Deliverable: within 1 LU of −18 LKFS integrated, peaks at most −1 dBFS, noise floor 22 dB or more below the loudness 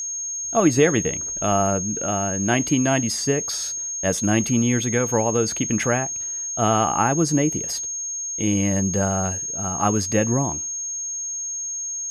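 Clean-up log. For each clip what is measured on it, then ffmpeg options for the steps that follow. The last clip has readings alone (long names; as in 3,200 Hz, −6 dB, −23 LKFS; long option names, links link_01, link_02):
interfering tone 6,500 Hz; level of the tone −26 dBFS; integrated loudness −21.5 LKFS; sample peak −5.0 dBFS; target loudness −18.0 LKFS
→ -af "bandreject=frequency=6500:width=30"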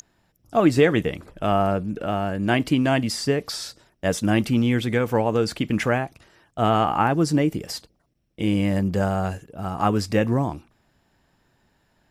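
interfering tone none found; integrated loudness −22.5 LKFS; sample peak −6.0 dBFS; target loudness −18.0 LKFS
→ -af "volume=4.5dB"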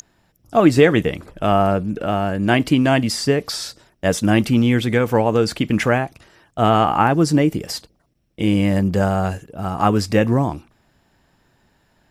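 integrated loudness −18.0 LKFS; sample peak −1.5 dBFS; background noise floor −63 dBFS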